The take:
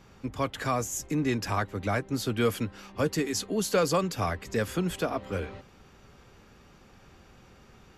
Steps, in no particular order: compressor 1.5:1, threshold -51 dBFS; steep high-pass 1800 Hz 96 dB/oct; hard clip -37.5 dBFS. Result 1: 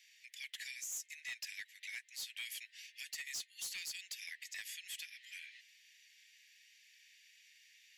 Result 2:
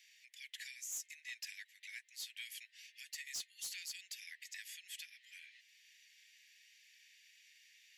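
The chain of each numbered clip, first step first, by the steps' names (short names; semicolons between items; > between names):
steep high-pass > compressor > hard clip; compressor > steep high-pass > hard clip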